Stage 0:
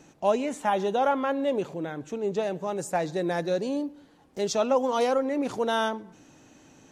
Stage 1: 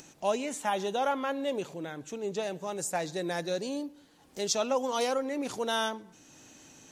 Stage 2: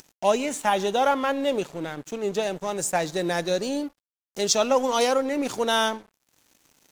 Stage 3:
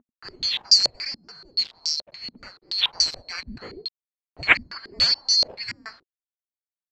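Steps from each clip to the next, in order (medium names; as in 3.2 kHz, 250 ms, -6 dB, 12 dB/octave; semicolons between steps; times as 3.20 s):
upward compressor, threshold -45 dBFS; treble shelf 2.6 kHz +11.5 dB; trim -6 dB
crossover distortion -49.5 dBFS; trim +8 dB
split-band scrambler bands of 4 kHz; small samples zeroed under -41 dBFS; step-sequenced low-pass 7 Hz 240–5500 Hz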